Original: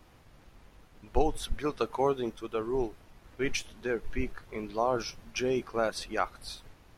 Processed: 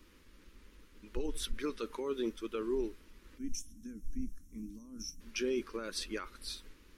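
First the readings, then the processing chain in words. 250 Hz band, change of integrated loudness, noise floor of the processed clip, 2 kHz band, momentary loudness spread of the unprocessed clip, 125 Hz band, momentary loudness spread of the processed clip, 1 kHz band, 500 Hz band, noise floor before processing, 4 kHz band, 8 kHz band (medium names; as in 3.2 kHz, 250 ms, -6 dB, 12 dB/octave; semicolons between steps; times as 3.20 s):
-4.0 dB, -7.0 dB, -61 dBFS, -9.0 dB, 8 LU, -11.0 dB, 12 LU, -16.5 dB, -8.0 dB, -58 dBFS, -3.0 dB, -1.5 dB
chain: peak limiter -24 dBFS, peak gain reduction 11.5 dB; time-frequency box 3.38–5.21 s, 320–5300 Hz -24 dB; static phaser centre 300 Hz, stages 4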